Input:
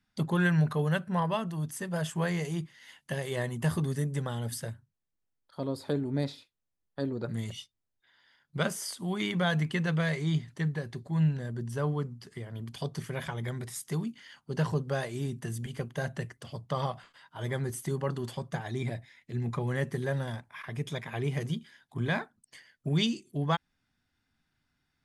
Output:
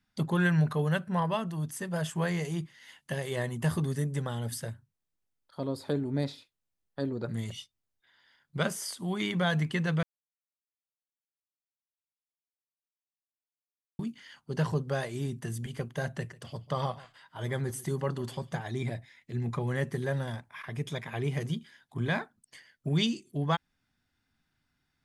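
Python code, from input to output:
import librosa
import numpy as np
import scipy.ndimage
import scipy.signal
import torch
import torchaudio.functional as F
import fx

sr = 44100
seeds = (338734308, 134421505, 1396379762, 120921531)

y = fx.echo_single(x, sr, ms=143, db=-20.0, at=(16.05, 18.65))
y = fx.edit(y, sr, fx.silence(start_s=10.03, length_s=3.96), tone=tone)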